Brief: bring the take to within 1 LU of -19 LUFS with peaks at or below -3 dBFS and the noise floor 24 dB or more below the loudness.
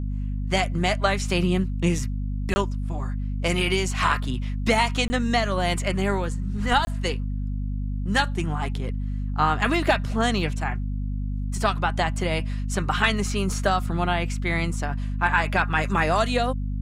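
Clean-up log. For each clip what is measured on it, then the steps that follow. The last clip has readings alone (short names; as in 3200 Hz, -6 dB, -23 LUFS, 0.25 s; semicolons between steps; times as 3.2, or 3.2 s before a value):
dropouts 3; longest dropout 20 ms; hum 50 Hz; harmonics up to 250 Hz; hum level -25 dBFS; loudness -24.5 LUFS; peak -6.0 dBFS; loudness target -19.0 LUFS
-> interpolate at 2.54/5.08/6.85, 20 ms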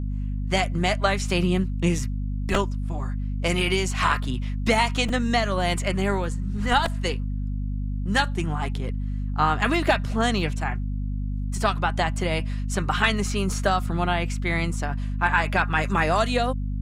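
dropouts 0; hum 50 Hz; harmonics up to 250 Hz; hum level -25 dBFS
-> notches 50/100/150/200/250 Hz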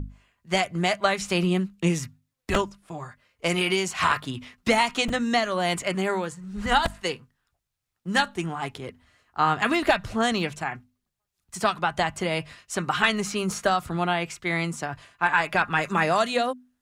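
hum none; loudness -25.5 LUFS; peak -6.5 dBFS; loudness target -19.0 LUFS
-> gain +6.5 dB; limiter -3 dBFS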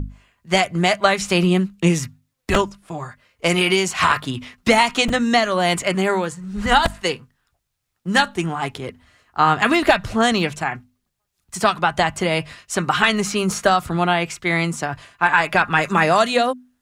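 loudness -19.0 LUFS; peak -3.0 dBFS; noise floor -76 dBFS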